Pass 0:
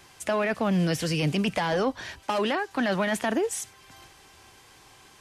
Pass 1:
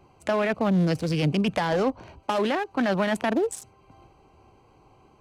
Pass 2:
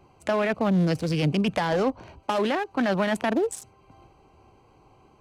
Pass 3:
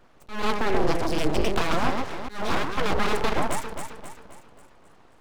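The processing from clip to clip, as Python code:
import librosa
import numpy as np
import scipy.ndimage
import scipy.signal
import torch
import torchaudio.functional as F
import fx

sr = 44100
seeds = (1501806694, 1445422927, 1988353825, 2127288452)

y1 = fx.wiener(x, sr, points=25)
y1 = y1 * librosa.db_to_amplitude(2.5)
y2 = y1
y3 = fx.echo_alternate(y2, sr, ms=133, hz=900.0, feedback_pct=68, wet_db=-3.0)
y3 = np.abs(y3)
y3 = fx.auto_swell(y3, sr, attack_ms=208.0)
y3 = y3 * librosa.db_to_amplitude(1.5)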